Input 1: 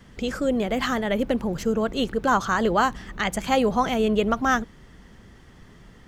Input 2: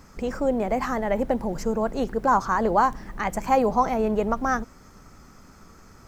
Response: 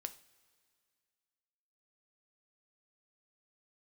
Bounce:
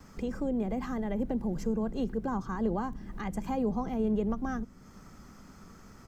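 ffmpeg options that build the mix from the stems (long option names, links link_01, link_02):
-filter_complex "[0:a]volume=-14.5dB[link_01];[1:a]equalizer=frequency=200:width_type=o:width=0.8:gain=5.5,adelay=2.6,volume=-4dB[link_02];[link_01][link_02]amix=inputs=2:normalize=0,acrossover=split=330[link_03][link_04];[link_04]acompressor=threshold=-47dB:ratio=2[link_05];[link_03][link_05]amix=inputs=2:normalize=0"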